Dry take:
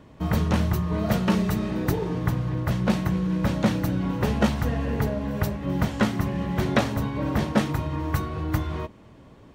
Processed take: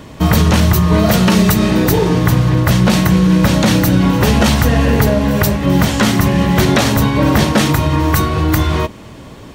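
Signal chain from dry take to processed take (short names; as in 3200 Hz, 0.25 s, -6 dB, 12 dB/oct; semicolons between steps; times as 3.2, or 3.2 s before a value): high shelf 2900 Hz +10 dB; maximiser +15.5 dB; gain -1 dB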